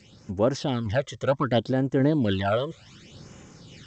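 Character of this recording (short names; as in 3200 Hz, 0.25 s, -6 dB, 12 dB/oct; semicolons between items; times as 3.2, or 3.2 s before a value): random-step tremolo; phasing stages 12, 0.66 Hz, lowest notch 250–4200 Hz; G.722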